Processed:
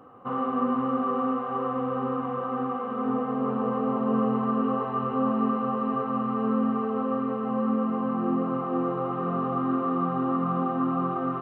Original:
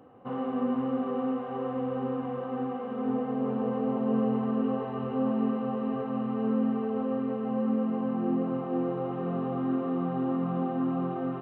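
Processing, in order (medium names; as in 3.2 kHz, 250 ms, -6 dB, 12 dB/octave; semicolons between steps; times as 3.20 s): peaking EQ 1.2 kHz +13 dB 0.44 oct; trim +1.5 dB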